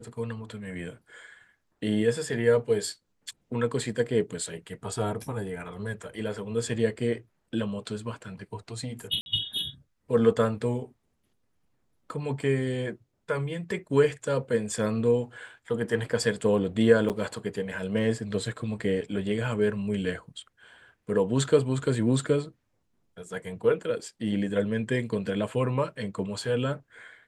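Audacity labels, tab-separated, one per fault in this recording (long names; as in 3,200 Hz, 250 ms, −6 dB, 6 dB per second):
9.210000	9.260000	drop-out 51 ms
17.090000	17.100000	drop-out 8.4 ms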